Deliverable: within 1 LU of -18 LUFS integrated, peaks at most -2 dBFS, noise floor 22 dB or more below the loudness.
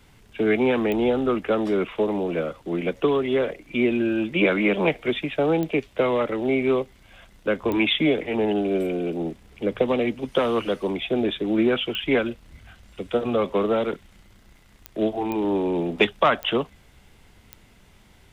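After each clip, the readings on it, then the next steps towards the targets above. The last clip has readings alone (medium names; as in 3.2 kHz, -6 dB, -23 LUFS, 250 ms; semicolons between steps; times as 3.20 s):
clicks found 8; loudness -23.5 LUFS; peak level -5.0 dBFS; loudness target -18.0 LUFS
-> de-click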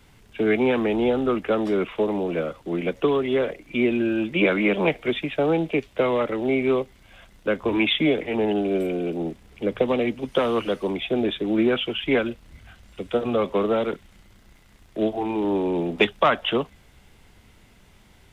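clicks found 0; loudness -23.5 LUFS; peak level -5.0 dBFS; loudness target -18.0 LUFS
-> trim +5.5 dB; peak limiter -2 dBFS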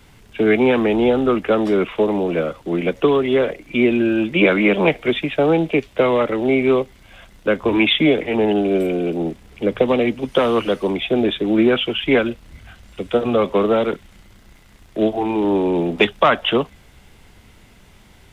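loudness -18.0 LUFS; peak level -2.0 dBFS; noise floor -49 dBFS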